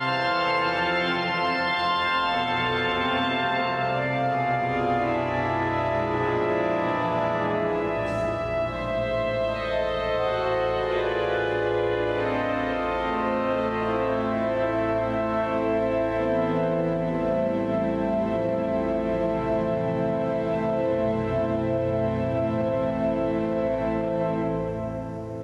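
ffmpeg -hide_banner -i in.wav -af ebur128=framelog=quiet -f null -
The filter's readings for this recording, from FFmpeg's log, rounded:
Integrated loudness:
  I:         -25.0 LUFS
  Threshold: -35.0 LUFS
Loudness range:
  LRA:         1.8 LU
  Threshold: -45.1 LUFS
  LRA low:   -25.8 LUFS
  LRA high:  -23.9 LUFS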